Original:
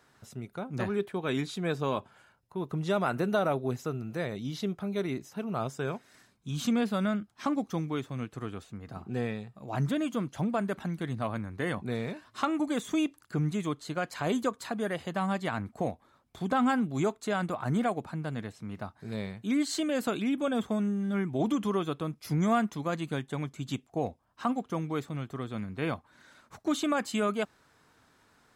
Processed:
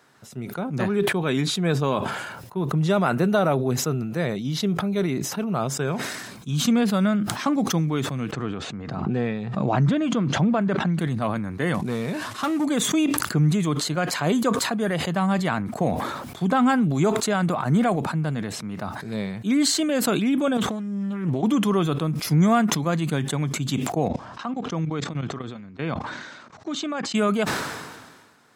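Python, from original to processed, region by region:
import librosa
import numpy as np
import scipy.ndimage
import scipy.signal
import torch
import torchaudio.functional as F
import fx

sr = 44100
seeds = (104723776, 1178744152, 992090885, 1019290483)

y = fx.chain(x, sr, fx.air_absorb(metres=120.0),
    fx.pre_swell(db_per_s=29.0), at=(8.32, 10.99))
y = fx.chain(y, sr, fx.cvsd(bps=64000),
    fx.clip_hard(threshold_db=-26.0), at=(11.74, 12.65))
y = fx.chain(y, sr, fx.over_compress(threshold_db=-36.0, ratio=-1.0),
    fx.doppler_dist(depth_ms=0.34), at=(20.57, 21.43))
y = fx.chain(y, sr, fx.lowpass(hz=6600.0, slope=24),
    fx.level_steps(step_db=17), at=(24.08, 27.15))
y = scipy.signal.sosfilt(scipy.signal.butter(2, 120.0, 'highpass', fs=sr, output='sos'), y)
y = fx.dynamic_eq(y, sr, hz=160.0, q=2.2, threshold_db=-47.0, ratio=4.0, max_db=6)
y = fx.sustainer(y, sr, db_per_s=39.0)
y = y * 10.0 ** (6.0 / 20.0)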